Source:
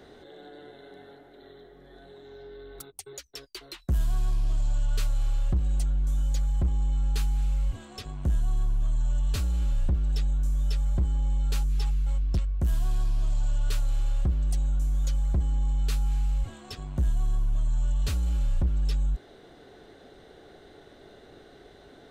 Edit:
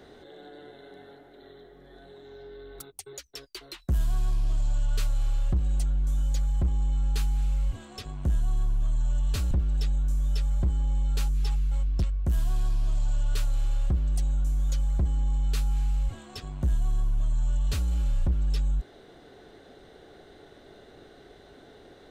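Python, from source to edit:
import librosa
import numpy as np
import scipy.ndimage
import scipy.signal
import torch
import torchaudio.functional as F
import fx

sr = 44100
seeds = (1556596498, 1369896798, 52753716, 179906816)

y = fx.edit(x, sr, fx.cut(start_s=9.51, length_s=0.35), tone=tone)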